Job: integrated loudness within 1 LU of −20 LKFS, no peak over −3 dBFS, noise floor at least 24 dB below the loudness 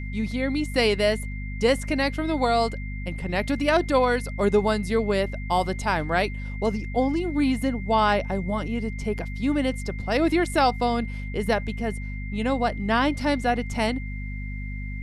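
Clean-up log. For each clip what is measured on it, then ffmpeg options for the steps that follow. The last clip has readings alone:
mains hum 50 Hz; hum harmonics up to 250 Hz; level of the hum −30 dBFS; interfering tone 2,100 Hz; level of the tone −40 dBFS; integrated loudness −25.0 LKFS; sample peak −8.5 dBFS; target loudness −20.0 LKFS
→ -af "bandreject=frequency=50:width_type=h:width=4,bandreject=frequency=100:width_type=h:width=4,bandreject=frequency=150:width_type=h:width=4,bandreject=frequency=200:width_type=h:width=4,bandreject=frequency=250:width_type=h:width=4"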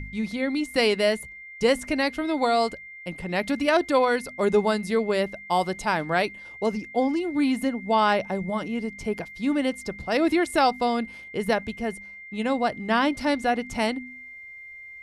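mains hum none found; interfering tone 2,100 Hz; level of the tone −40 dBFS
→ -af "bandreject=frequency=2100:width=30"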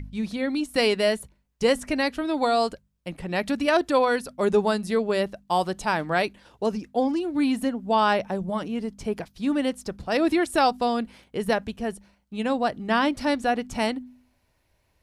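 interfering tone none found; integrated loudness −25.0 LKFS; sample peak −9.0 dBFS; target loudness −20.0 LKFS
→ -af "volume=5dB"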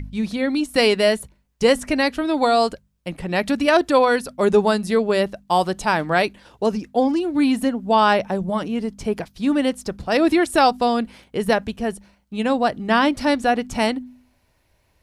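integrated loudness −20.0 LKFS; sample peak −4.0 dBFS; background noise floor −64 dBFS

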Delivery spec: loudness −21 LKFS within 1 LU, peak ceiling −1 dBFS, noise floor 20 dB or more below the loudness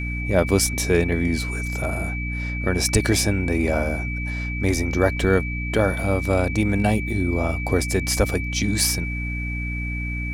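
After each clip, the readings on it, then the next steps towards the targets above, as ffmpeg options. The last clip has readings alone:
mains hum 60 Hz; hum harmonics up to 300 Hz; level of the hum −25 dBFS; interfering tone 2,300 Hz; level of the tone −30 dBFS; integrated loudness −22.5 LKFS; sample peak −5.0 dBFS; target loudness −21.0 LKFS
→ -af "bandreject=frequency=60:width_type=h:width=6,bandreject=frequency=120:width_type=h:width=6,bandreject=frequency=180:width_type=h:width=6,bandreject=frequency=240:width_type=h:width=6,bandreject=frequency=300:width_type=h:width=6"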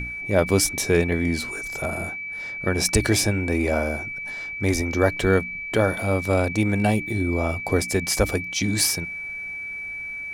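mains hum none found; interfering tone 2,300 Hz; level of the tone −30 dBFS
→ -af "bandreject=frequency=2300:width=30"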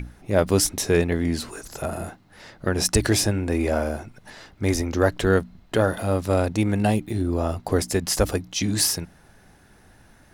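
interfering tone none found; integrated loudness −23.5 LKFS; sample peak −5.0 dBFS; target loudness −21.0 LKFS
→ -af "volume=2.5dB"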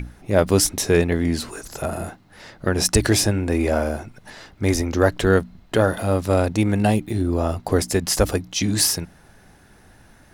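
integrated loudness −21.0 LKFS; sample peak −2.5 dBFS; background noise floor −52 dBFS

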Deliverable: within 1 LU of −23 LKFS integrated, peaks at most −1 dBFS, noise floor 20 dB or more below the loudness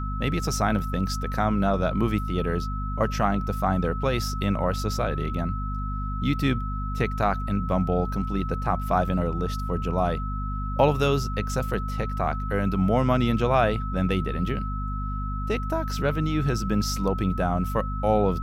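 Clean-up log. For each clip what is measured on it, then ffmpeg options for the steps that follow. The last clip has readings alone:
mains hum 50 Hz; hum harmonics up to 250 Hz; level of the hum −27 dBFS; interfering tone 1,300 Hz; level of the tone −34 dBFS; integrated loudness −26.0 LKFS; sample peak −7.5 dBFS; target loudness −23.0 LKFS
→ -af "bandreject=frequency=50:width_type=h:width=4,bandreject=frequency=100:width_type=h:width=4,bandreject=frequency=150:width_type=h:width=4,bandreject=frequency=200:width_type=h:width=4,bandreject=frequency=250:width_type=h:width=4"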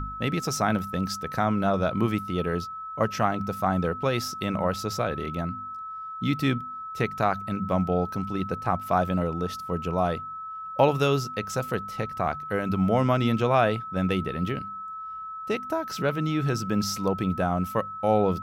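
mains hum none found; interfering tone 1,300 Hz; level of the tone −34 dBFS
→ -af "bandreject=frequency=1300:width=30"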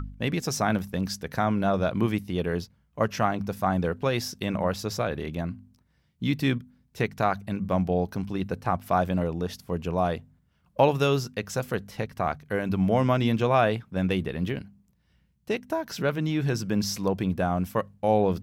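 interfering tone none found; integrated loudness −27.5 LKFS; sample peak −8.0 dBFS; target loudness −23.0 LKFS
→ -af "volume=4.5dB"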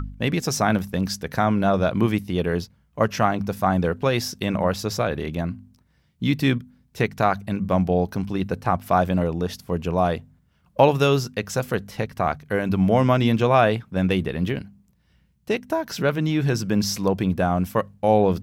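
integrated loudness −23.0 LKFS; sample peak −3.5 dBFS; background noise floor −63 dBFS

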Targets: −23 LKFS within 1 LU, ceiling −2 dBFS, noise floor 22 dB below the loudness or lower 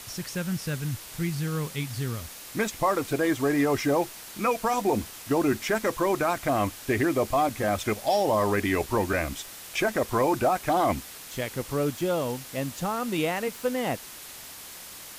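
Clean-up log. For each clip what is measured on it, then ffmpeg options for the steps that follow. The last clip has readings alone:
background noise floor −43 dBFS; target noise floor −49 dBFS; integrated loudness −27.0 LKFS; sample peak −13.5 dBFS; target loudness −23.0 LKFS
→ -af "afftdn=noise_reduction=6:noise_floor=-43"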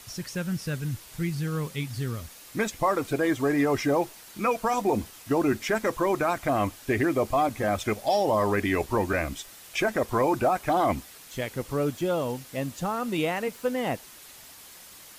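background noise floor −48 dBFS; target noise floor −50 dBFS
→ -af "afftdn=noise_reduction=6:noise_floor=-48"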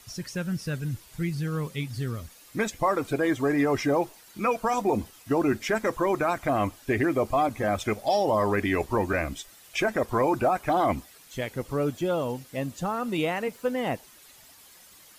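background noise floor −53 dBFS; integrated loudness −27.5 LKFS; sample peak −14.0 dBFS; target loudness −23.0 LKFS
→ -af "volume=4.5dB"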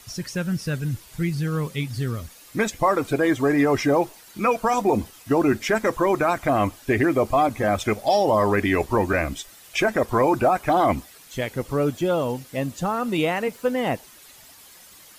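integrated loudness −23.0 LKFS; sample peak −9.5 dBFS; background noise floor −48 dBFS

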